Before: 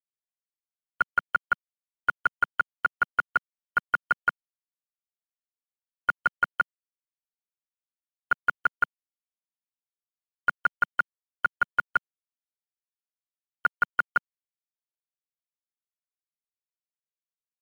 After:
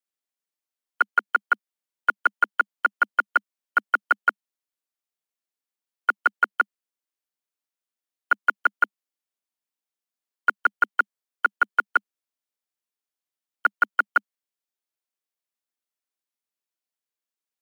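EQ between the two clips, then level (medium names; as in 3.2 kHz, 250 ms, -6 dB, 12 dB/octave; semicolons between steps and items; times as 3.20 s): steep high-pass 200 Hz 96 dB/octave; +4.0 dB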